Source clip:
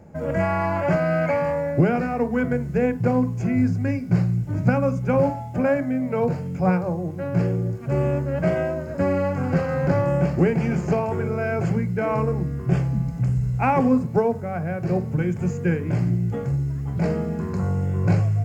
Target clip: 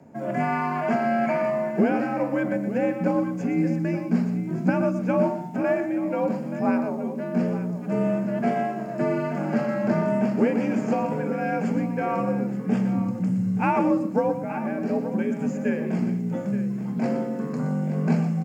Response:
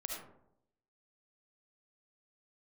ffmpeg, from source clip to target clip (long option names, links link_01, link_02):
-af "aecho=1:1:121|876:0.316|0.237,afreqshift=61,volume=-3dB"